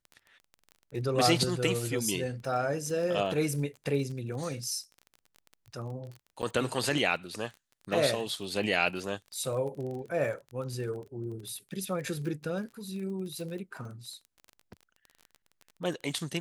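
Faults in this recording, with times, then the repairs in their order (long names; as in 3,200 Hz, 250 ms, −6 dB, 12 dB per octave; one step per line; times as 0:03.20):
surface crackle 23 per second −38 dBFS
0:06.42–0:06.43: drop-out 8.8 ms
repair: click removal
repair the gap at 0:06.42, 8.8 ms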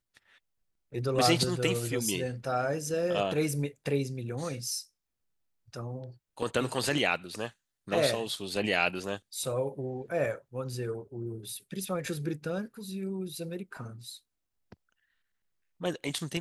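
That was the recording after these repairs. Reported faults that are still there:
none of them is left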